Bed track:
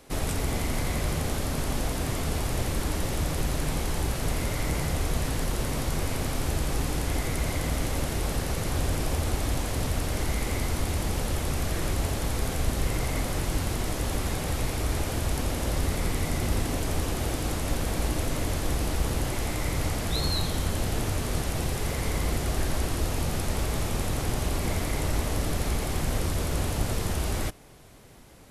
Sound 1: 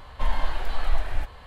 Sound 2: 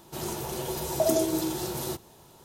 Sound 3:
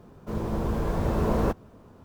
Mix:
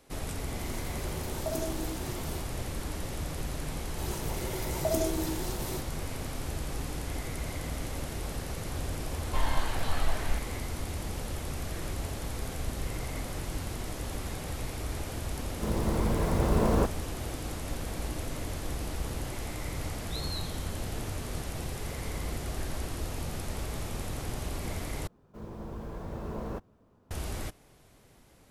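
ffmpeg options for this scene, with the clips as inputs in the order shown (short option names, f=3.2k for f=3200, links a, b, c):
-filter_complex "[2:a]asplit=2[a][b];[3:a]asplit=2[c][d];[0:a]volume=-7.5dB[e];[1:a]bass=f=250:g=-5,treble=f=4k:g=4[f];[e]asplit=2[g][h];[g]atrim=end=25.074[i];[d]atrim=end=2.04,asetpts=PTS-STARTPTS,volume=-12.5dB[j];[h]atrim=start=27.106[k];[a]atrim=end=2.44,asetpts=PTS-STARTPTS,volume=-10.5dB,afade=t=in:d=0.004:c=hsin,afade=t=out:st=2.436:d=0.004:c=hsin,adelay=460[l];[b]atrim=end=2.44,asetpts=PTS-STARTPTS,volume=-5.5dB,afade=t=in:d=0.004:c=hsin,afade=t=out:st=2.436:d=0.004:c=hsin,adelay=169785S[m];[f]atrim=end=1.46,asetpts=PTS-STARTPTS,volume=-1.5dB,afade=t=in:d=0.004:c=hsin,afade=t=out:st=1.456:d=0.004:c=hsin,adelay=403074S[n];[c]atrim=end=2.04,asetpts=PTS-STARTPTS,volume=-1dB,afade=t=in:d=0.004:c=hsin,afade=t=out:st=2.036:d=0.004:c=hsin,adelay=15340[o];[i][j]acrossfade=d=0.004:c1=hsin:c2=hsin[p];[p][k]acrossfade=d=0.004:c1=hsin:c2=hsin[q];[q][l][m][n][o]amix=inputs=5:normalize=0"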